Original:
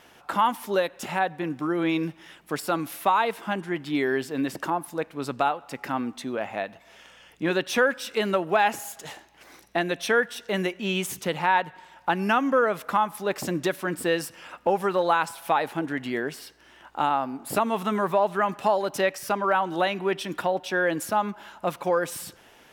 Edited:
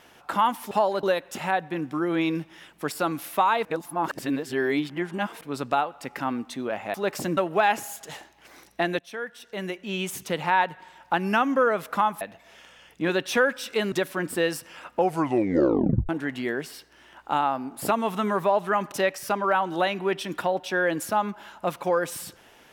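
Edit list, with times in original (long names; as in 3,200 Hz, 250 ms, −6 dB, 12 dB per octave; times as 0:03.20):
0:03.33–0:05.09: reverse
0:06.62–0:08.33: swap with 0:13.17–0:13.60
0:09.95–0:11.41: fade in, from −18 dB
0:14.67: tape stop 1.10 s
0:18.60–0:18.92: move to 0:00.71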